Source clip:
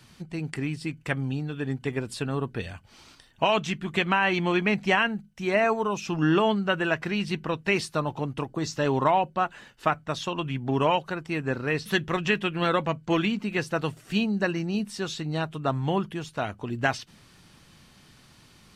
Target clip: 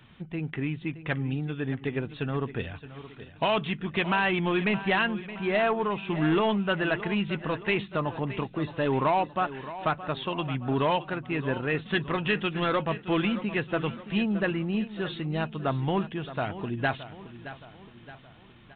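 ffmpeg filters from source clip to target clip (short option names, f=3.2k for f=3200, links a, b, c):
-af "aresample=8000,asoftclip=type=tanh:threshold=-17dB,aresample=44100,aecho=1:1:620|1240|1860|2480|3100:0.2|0.0978|0.0479|0.0235|0.0115"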